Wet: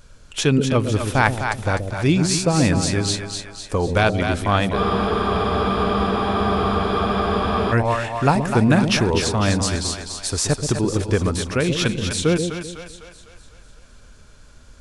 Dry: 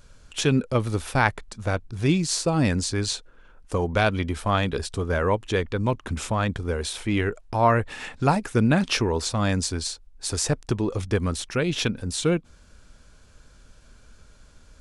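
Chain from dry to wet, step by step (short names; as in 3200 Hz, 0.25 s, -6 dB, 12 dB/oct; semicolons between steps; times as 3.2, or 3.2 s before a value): split-band echo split 590 Hz, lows 0.128 s, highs 0.251 s, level -6 dB; spectral freeze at 4.79, 2.92 s; gain +3.5 dB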